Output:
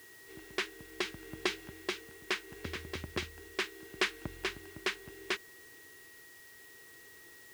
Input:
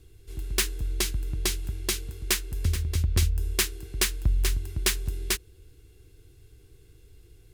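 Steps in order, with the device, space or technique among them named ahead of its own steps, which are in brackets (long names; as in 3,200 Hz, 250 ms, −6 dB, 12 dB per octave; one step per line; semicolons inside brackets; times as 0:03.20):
shortwave radio (band-pass filter 310–2,700 Hz; amplitude tremolo 0.7 Hz, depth 44%; steady tone 1,900 Hz −57 dBFS; white noise bed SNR 17 dB)
level +2 dB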